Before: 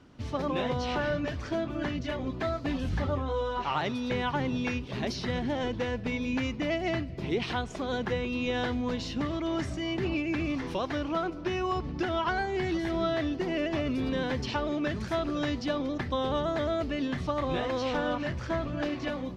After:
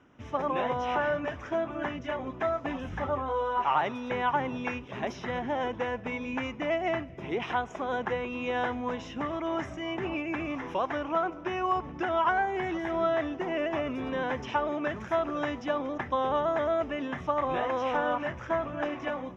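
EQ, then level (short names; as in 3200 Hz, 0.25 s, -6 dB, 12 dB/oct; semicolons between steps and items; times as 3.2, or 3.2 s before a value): dynamic EQ 860 Hz, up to +7 dB, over -44 dBFS, Q 1.1; running mean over 10 samples; tilt +2.5 dB/oct; 0.0 dB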